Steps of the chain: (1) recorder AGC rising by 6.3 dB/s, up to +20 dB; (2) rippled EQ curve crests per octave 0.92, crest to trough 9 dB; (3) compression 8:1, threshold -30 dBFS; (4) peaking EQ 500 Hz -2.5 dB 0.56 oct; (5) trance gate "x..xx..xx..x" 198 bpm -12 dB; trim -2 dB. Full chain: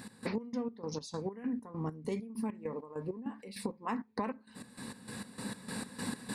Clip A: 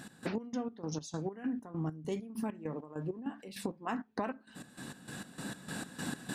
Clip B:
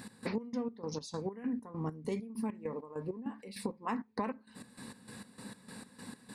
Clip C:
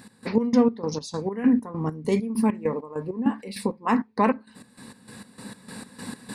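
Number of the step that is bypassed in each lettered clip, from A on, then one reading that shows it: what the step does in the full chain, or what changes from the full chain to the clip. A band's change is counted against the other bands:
2, 125 Hz band +2.0 dB; 1, momentary loudness spread change +5 LU; 3, momentary loudness spread change +11 LU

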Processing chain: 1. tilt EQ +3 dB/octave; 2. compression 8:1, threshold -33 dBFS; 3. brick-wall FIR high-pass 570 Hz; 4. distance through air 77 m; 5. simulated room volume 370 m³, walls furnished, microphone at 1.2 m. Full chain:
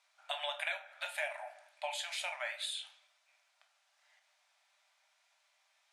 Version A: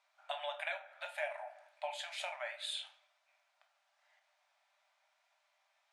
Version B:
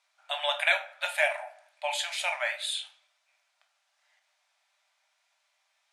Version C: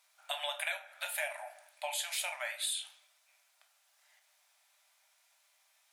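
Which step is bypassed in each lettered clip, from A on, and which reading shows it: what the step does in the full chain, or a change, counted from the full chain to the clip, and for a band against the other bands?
1, 500 Hz band +4.5 dB; 2, mean gain reduction 7.0 dB; 4, 8 kHz band +8.5 dB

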